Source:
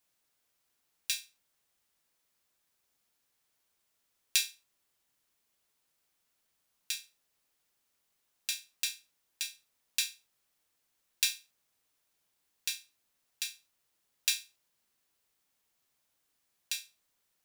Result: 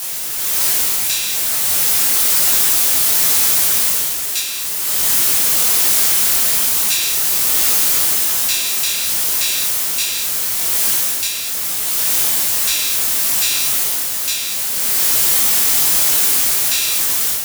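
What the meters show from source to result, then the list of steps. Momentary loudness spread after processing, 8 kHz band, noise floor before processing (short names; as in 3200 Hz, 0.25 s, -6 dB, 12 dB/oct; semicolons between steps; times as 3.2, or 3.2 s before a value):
6 LU, +26.0 dB, -79 dBFS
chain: zero-crossing step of -19 dBFS; AGC gain up to 11 dB; frequency shift +17 Hz; high shelf 5400 Hz +9.5 dB; detuned doubles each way 41 cents; gain -2.5 dB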